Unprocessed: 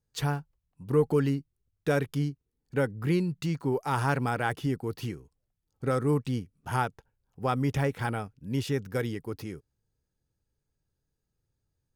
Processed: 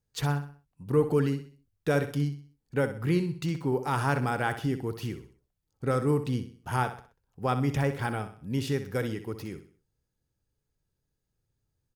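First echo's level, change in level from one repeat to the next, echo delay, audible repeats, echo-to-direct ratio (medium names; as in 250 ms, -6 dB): -11.0 dB, -8.0 dB, 63 ms, 3, -10.5 dB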